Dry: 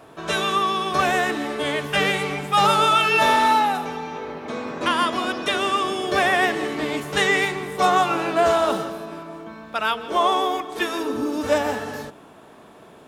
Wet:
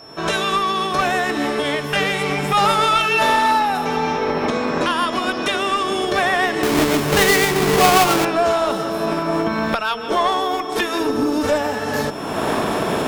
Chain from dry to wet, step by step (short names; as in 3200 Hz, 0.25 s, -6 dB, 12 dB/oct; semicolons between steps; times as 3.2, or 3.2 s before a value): 6.63–8.25 half-waves squared off; recorder AGC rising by 37 dB/s; added harmonics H 2 -8 dB, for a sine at -2.5 dBFS; whine 5400 Hz -42 dBFS; gain +1 dB